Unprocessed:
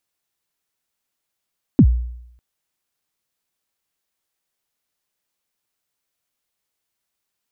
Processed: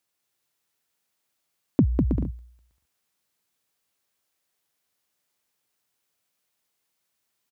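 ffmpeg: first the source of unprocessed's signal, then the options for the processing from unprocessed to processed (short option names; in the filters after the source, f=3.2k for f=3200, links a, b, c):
-f lavfi -i "aevalsrc='0.596*pow(10,-3*t/0.77)*sin(2*PI*(320*0.07/log(60/320)*(exp(log(60/320)*min(t,0.07)/0.07)-1)+60*max(t-0.07,0)))':d=0.6:s=44100"
-filter_complex "[0:a]highpass=70,acompressor=threshold=-16dB:ratio=6,asplit=2[a][b];[b]aecho=0:1:200|320|392|435.2|461.1:0.631|0.398|0.251|0.158|0.1[c];[a][c]amix=inputs=2:normalize=0"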